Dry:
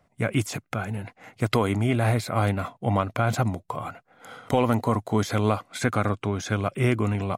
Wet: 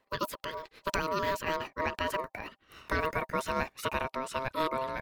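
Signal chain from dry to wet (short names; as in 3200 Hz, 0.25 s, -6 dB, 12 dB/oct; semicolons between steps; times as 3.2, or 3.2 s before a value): speed glide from 167% -> 127%; ring modulator 790 Hz; gain -5.5 dB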